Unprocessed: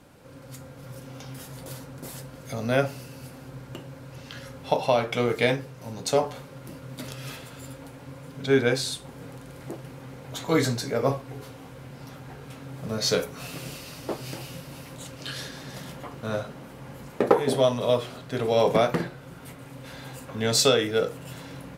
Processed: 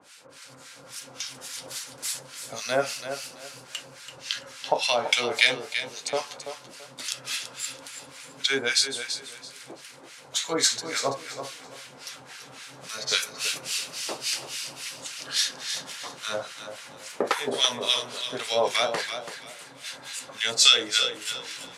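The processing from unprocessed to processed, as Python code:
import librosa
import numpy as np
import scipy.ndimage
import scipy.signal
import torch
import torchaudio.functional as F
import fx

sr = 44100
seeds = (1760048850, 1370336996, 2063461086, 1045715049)

p1 = fx.weighting(x, sr, curve='ITU-R 468')
p2 = fx.vibrato(p1, sr, rate_hz=4.1, depth_cents=21.0)
p3 = fx.rider(p2, sr, range_db=3, speed_s=0.5)
p4 = p2 + F.gain(torch.from_numpy(p3), 2.5).numpy()
p5 = fx.harmonic_tremolo(p4, sr, hz=3.6, depth_pct=100, crossover_hz=1200.0)
p6 = p5 + fx.echo_feedback(p5, sr, ms=334, feedback_pct=25, wet_db=-9.5, dry=0)
y = F.gain(torch.from_numpy(p6), -4.0).numpy()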